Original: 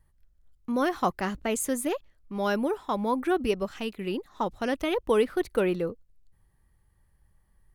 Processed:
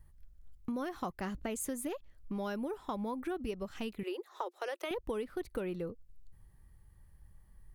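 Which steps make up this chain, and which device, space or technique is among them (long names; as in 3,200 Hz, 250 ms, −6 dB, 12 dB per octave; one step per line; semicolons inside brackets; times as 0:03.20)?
0:04.03–0:04.91: Chebyshev high-pass filter 350 Hz, order 6
ASMR close-microphone chain (low-shelf EQ 210 Hz +7 dB; downward compressor 5 to 1, threshold −36 dBFS, peak gain reduction 17 dB; high-shelf EQ 10,000 Hz +4 dB)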